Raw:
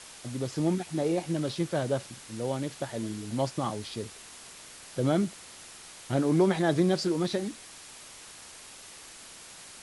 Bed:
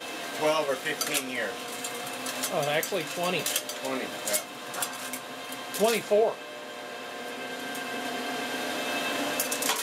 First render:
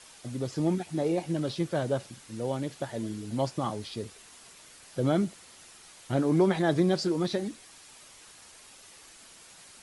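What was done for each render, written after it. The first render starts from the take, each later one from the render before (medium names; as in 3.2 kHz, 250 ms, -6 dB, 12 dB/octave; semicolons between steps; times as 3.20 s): noise reduction 6 dB, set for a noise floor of -48 dBFS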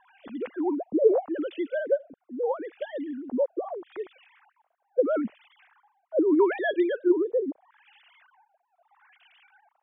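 formants replaced by sine waves; LFO low-pass sine 0.78 Hz 460–3000 Hz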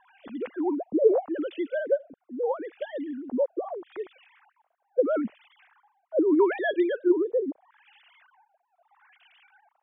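no audible change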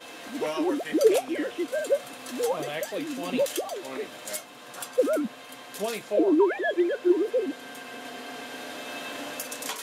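add bed -6.5 dB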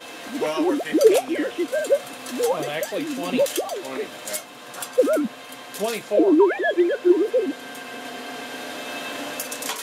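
trim +5 dB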